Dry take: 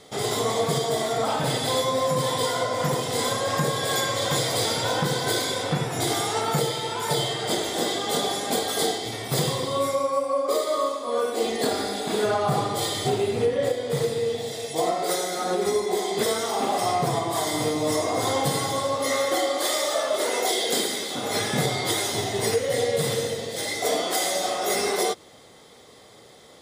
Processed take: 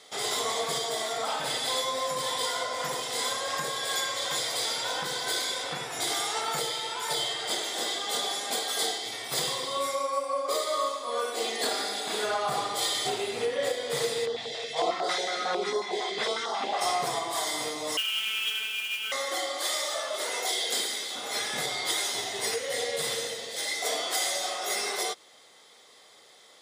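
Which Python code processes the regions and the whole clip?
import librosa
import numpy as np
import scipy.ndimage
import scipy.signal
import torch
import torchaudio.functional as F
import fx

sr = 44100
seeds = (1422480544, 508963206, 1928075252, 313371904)

y = fx.lowpass(x, sr, hz=3700.0, slope=12, at=(14.25, 16.8), fade=0.02)
y = fx.dmg_crackle(y, sr, seeds[0], per_s=160.0, level_db=-54.0, at=(14.25, 16.8), fade=0.02)
y = fx.filter_held_notch(y, sr, hz=11.0, low_hz=230.0, high_hz=2400.0, at=(14.25, 16.8), fade=0.02)
y = fx.chain(y, sr, fx.freq_invert(carrier_hz=3500),
    fx.robotise(hz=219.0),
    fx.mod_noise(seeds[1], snr_db=10), at=(17.97, 19.12))
y = fx.highpass(y, sr, hz=1400.0, slope=6)
y = fx.high_shelf(y, sr, hz=12000.0, db=-8.0)
y = fx.rider(y, sr, range_db=10, speed_s=2.0)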